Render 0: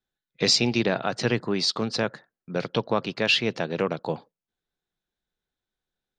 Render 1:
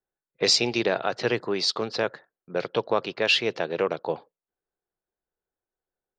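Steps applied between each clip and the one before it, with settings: low-pass opened by the level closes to 1200 Hz, open at -18.5 dBFS; resonant low shelf 300 Hz -6.5 dB, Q 1.5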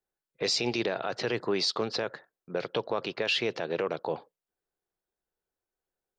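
limiter -18.5 dBFS, peak gain reduction 9 dB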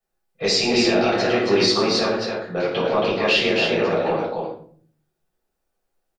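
on a send: loudspeakers at several distances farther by 37 m -11 dB, 94 m -4 dB; on the sum: shoebox room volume 520 m³, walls furnished, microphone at 6.4 m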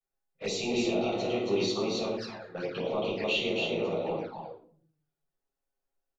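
envelope flanger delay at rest 7.3 ms, full sweep at -17.5 dBFS; gain -9 dB

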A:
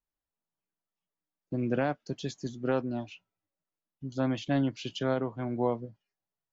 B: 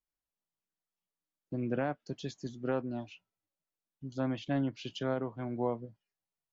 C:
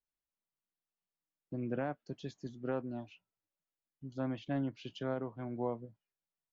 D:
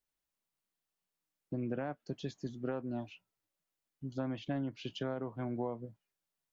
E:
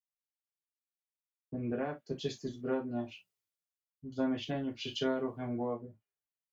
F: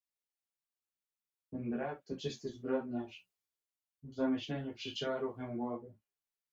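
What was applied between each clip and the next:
treble ducked by the level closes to 2700 Hz, closed at -24 dBFS; gain -4 dB
high shelf 4400 Hz -9 dB; gain -3.5 dB
compressor, threshold -37 dBFS, peak gain reduction 7.5 dB; gain +4.5 dB
reverb, pre-delay 3 ms, DRR -1 dB; three-band expander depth 70%
ensemble effect; gain +1 dB

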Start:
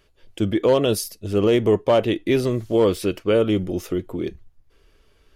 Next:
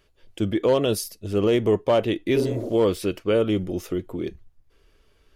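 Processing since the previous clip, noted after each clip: spectral repair 2.39–2.66, 230–1500 Hz; gain -2.5 dB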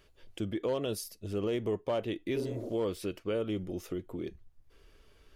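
compressor 1.5:1, threshold -51 dBFS, peak gain reduction 12.5 dB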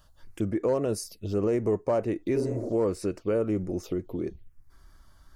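envelope phaser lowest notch 370 Hz, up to 3300 Hz, full sweep at -33.5 dBFS; gain +6.5 dB

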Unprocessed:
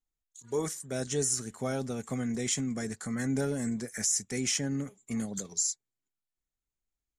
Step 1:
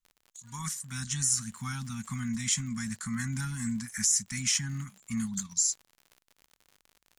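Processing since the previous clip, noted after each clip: elliptic band-stop 220–1000 Hz, stop band 40 dB; crackle 70/s -45 dBFS; gain +3 dB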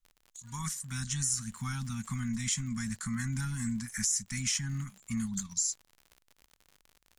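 low shelf 64 Hz +12 dB; compressor 1.5:1, threshold -34 dBFS, peak gain reduction 4.5 dB

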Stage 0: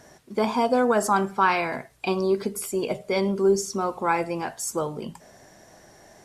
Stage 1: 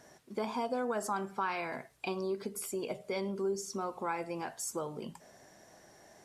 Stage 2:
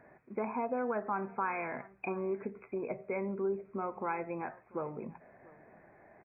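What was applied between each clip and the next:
low shelf 86 Hz -8.5 dB; compressor 2:1, threshold -29 dBFS, peak gain reduction 8 dB; gain -6.5 dB
brick-wall FIR low-pass 2600 Hz; echo 0.691 s -22.5 dB

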